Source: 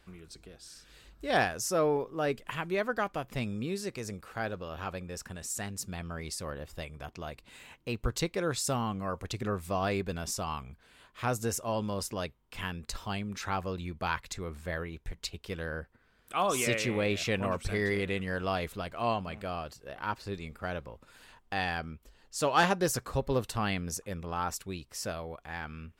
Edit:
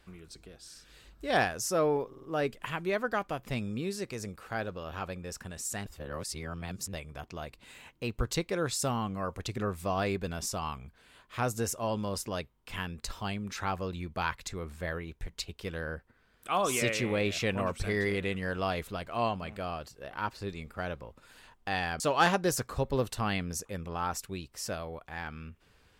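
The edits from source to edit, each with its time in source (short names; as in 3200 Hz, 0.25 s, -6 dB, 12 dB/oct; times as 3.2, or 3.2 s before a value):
2.08 stutter 0.05 s, 4 plays
5.71–6.78 reverse
21.85–22.37 cut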